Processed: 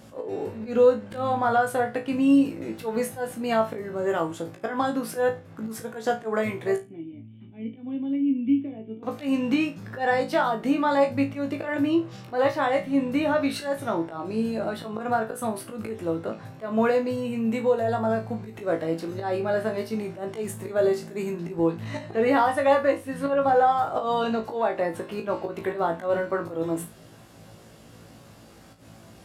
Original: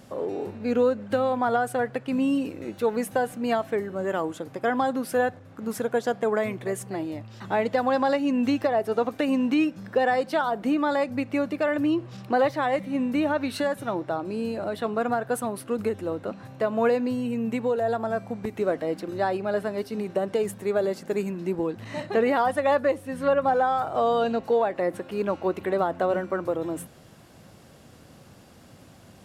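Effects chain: slow attack 125 ms; 6.76–9.03 s: cascade formant filter i; flutter echo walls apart 3.1 m, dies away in 0.24 s

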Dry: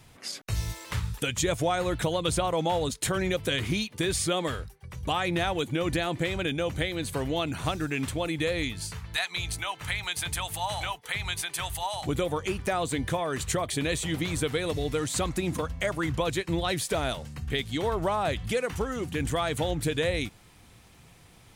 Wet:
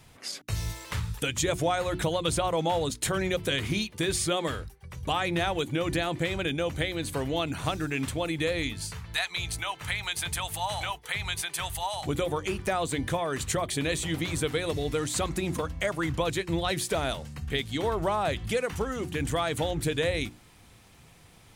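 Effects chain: hum notches 60/120/180/240/300/360 Hz

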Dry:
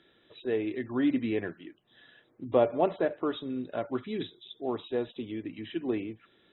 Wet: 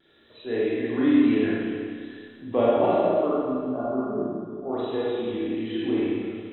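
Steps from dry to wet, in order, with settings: 2.94–4.73 s: elliptic low-pass 1.3 kHz, stop band 40 dB; vibrato 1.1 Hz 39 cents; Schroeder reverb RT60 2.1 s, combs from 27 ms, DRR -8 dB; trim -2 dB

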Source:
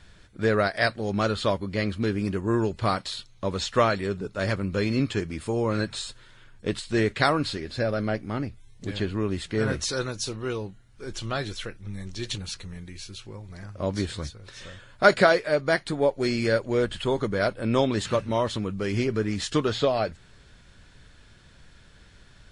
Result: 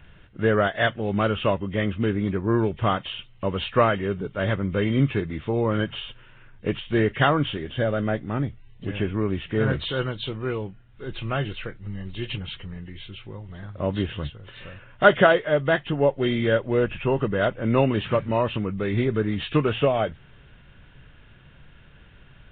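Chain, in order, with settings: knee-point frequency compression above 1.7 kHz 1.5:1; resampled via 8 kHz; peaking EQ 140 Hz +6.5 dB 0.28 oct; trim +2 dB

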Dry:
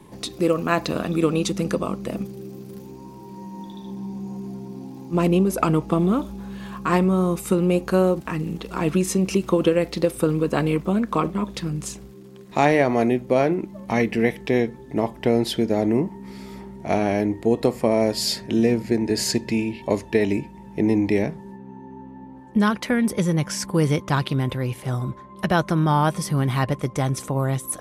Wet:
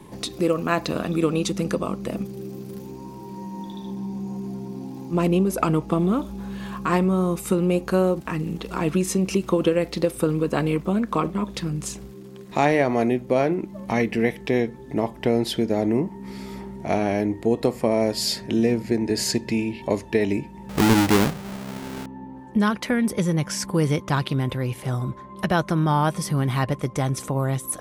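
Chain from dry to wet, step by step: 20.69–22.06 s: square wave that keeps the level; in parallel at -2 dB: compression, threshold -32 dBFS, peak gain reduction 18.5 dB; on the sum: trim -2.5 dB

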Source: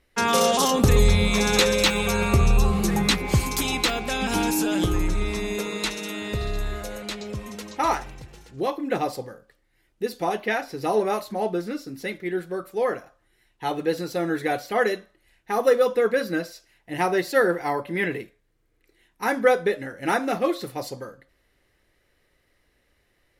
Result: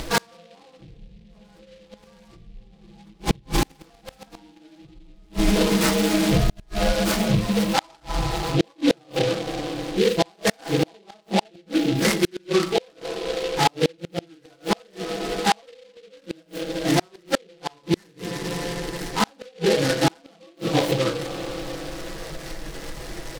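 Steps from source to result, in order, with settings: phase randomisation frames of 100 ms; low-pass that closes with the level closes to 420 Hz, closed at -14.5 dBFS; low-pass 1.4 kHz 6 dB/octave; hum notches 60/120/180/240/300/360/420/480 Hz; comb 6.1 ms, depth 94%; Schroeder reverb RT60 2.8 s, combs from 27 ms, DRR 17 dB; upward compressor, threshold -22 dBFS; inverted gate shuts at -16 dBFS, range -37 dB; delay time shaken by noise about 2.9 kHz, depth 0.098 ms; trim +8.5 dB

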